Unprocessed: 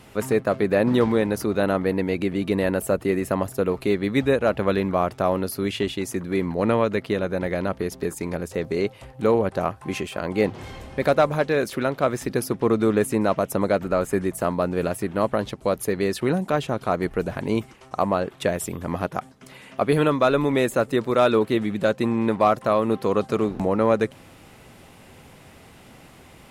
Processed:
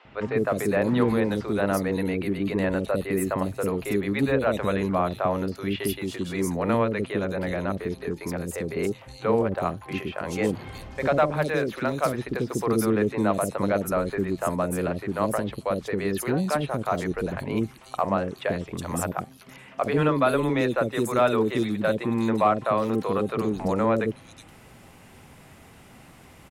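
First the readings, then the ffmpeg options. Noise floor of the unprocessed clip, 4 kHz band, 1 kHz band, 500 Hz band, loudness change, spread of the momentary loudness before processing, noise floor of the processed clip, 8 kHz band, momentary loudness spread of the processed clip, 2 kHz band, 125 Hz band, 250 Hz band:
-49 dBFS, -3.5 dB, -1.5 dB, -3.5 dB, -2.5 dB, 8 LU, -50 dBFS, -1.5 dB, 8 LU, -1.5 dB, -1.0 dB, -2.0 dB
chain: -filter_complex "[0:a]acrossover=split=460|3800[s0][s1][s2];[s0]adelay=50[s3];[s2]adelay=370[s4];[s3][s1][s4]amix=inputs=3:normalize=0,volume=0.891"

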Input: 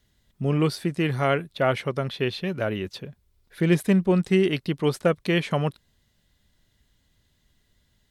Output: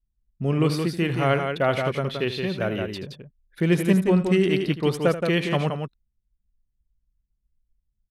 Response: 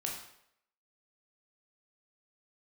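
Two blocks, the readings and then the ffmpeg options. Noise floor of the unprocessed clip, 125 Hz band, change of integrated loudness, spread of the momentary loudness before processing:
-68 dBFS, +1.0 dB, +1.0 dB, 9 LU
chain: -af "anlmdn=0.0398,aecho=1:1:80|172:0.224|0.531"

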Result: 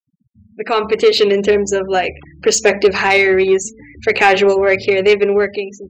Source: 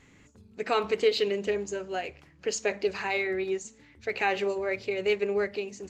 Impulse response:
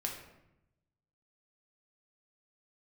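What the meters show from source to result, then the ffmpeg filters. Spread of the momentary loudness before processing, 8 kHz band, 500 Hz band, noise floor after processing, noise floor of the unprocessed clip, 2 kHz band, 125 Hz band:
10 LU, +17.0 dB, +15.0 dB, -60 dBFS, -58 dBFS, +16.0 dB, +16.0 dB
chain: -af "dynaudnorm=f=290:g=7:m=3.98,afftfilt=real='re*gte(hypot(re,im),0.0112)':imag='im*gte(hypot(re,im),0.0112)':win_size=1024:overlap=0.75,acontrast=87"

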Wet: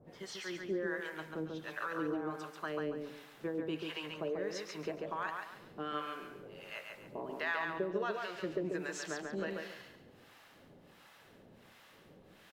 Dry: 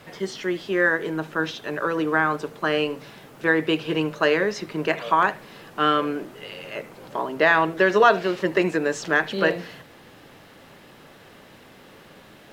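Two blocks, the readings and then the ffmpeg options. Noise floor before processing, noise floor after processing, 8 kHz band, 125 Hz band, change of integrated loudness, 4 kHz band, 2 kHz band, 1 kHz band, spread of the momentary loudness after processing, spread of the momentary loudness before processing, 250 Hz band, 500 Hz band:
-49 dBFS, -61 dBFS, -9.5 dB, -14.5 dB, -17.0 dB, -15.5 dB, -18.0 dB, -18.5 dB, 23 LU, 16 LU, -14.5 dB, -16.0 dB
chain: -filter_complex "[0:a]acompressor=threshold=0.0891:ratio=6,acrossover=split=710[s0][s1];[s0]aeval=exprs='val(0)*(1-1/2+1/2*cos(2*PI*1.4*n/s))':c=same[s2];[s1]aeval=exprs='val(0)*(1-1/2-1/2*cos(2*PI*1.4*n/s))':c=same[s3];[s2][s3]amix=inputs=2:normalize=0,aecho=1:1:140|280|420|560:0.631|0.189|0.0568|0.017,volume=0.376"

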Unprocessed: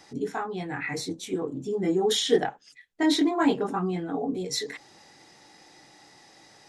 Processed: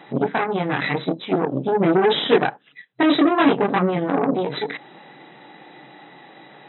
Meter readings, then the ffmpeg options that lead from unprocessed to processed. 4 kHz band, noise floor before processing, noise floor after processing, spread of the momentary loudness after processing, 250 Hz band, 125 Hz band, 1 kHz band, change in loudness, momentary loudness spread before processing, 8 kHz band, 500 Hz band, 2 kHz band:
+3.0 dB, -55 dBFS, -51 dBFS, 9 LU, +6.5 dB, +9.0 dB, +10.0 dB, +7.0 dB, 10 LU, under -40 dB, +7.5 dB, +9.5 dB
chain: -filter_complex "[0:a]asplit=2[s0][s1];[s1]acompressor=threshold=0.0158:ratio=8,volume=1.33[s2];[s0][s2]amix=inputs=2:normalize=0,highshelf=f=2800:g=-6.5,asoftclip=type=tanh:threshold=0.251,aeval=exprs='0.237*(cos(1*acos(clip(val(0)/0.237,-1,1)))-cos(1*PI/2))+0.00668*(cos(3*acos(clip(val(0)/0.237,-1,1)))-cos(3*PI/2))+0.0106*(cos(4*acos(clip(val(0)/0.237,-1,1)))-cos(4*PI/2))+0.0596*(cos(6*acos(clip(val(0)/0.237,-1,1)))-cos(6*PI/2))+0.00266*(cos(7*acos(clip(val(0)/0.237,-1,1)))-cos(7*PI/2))':c=same,afftfilt=real='re*between(b*sr/4096,120,4000)':imag='im*between(b*sr/4096,120,4000)':win_size=4096:overlap=0.75,volume=2"

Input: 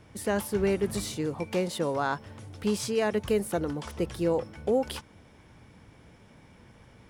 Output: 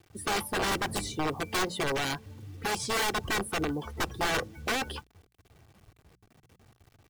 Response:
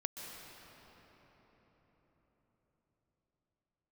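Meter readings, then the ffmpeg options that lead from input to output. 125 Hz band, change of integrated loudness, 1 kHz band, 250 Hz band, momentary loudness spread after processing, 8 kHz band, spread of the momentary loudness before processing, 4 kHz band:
-3.0 dB, -1.0 dB, +3.5 dB, -5.5 dB, 7 LU, +3.0 dB, 7 LU, +6.5 dB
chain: -af "aeval=exprs='(mod(15.8*val(0)+1,2)-1)/15.8':c=same,afftdn=nr=18:nf=-40,acrusher=bits=9:mix=0:aa=0.000001,bandreject=f=60:t=h:w=6,bandreject=f=120:t=h:w=6,bandreject=f=180:t=h:w=6,aecho=1:1:2.6:0.32,volume=1.12"

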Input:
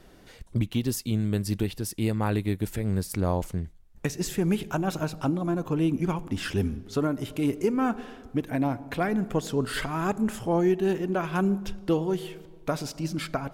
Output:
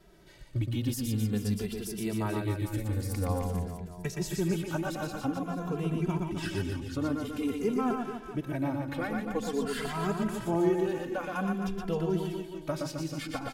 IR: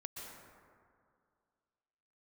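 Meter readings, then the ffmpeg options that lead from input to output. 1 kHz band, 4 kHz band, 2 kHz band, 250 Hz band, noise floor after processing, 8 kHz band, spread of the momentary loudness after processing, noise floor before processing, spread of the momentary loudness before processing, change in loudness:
-3.5 dB, -4.0 dB, -3.5 dB, -4.0 dB, -45 dBFS, -4.0 dB, 6 LU, -51 dBFS, 6 LU, -4.0 dB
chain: -filter_complex "[0:a]aecho=1:1:120|264|436.8|644.2|893:0.631|0.398|0.251|0.158|0.1,asplit=2[s0][s1];[s1]adelay=2.6,afreqshift=-0.49[s2];[s0][s2]amix=inputs=2:normalize=1,volume=0.708"

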